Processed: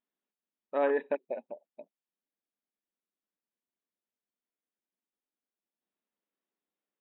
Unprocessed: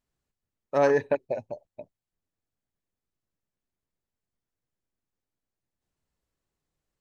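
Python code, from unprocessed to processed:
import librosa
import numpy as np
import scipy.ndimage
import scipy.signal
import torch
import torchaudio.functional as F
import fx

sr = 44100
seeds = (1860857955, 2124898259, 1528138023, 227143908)

y = fx.brickwall_bandpass(x, sr, low_hz=180.0, high_hz=3900.0)
y = y * librosa.db_to_amplitude(-6.0)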